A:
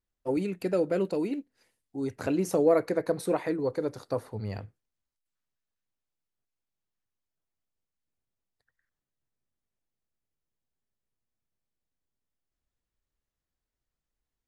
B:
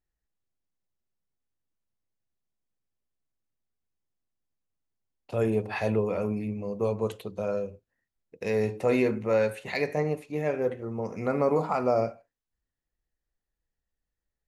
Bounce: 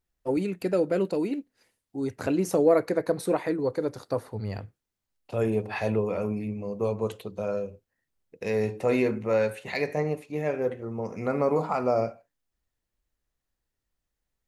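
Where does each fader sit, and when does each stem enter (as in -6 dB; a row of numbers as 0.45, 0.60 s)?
+2.0, 0.0 dB; 0.00, 0.00 s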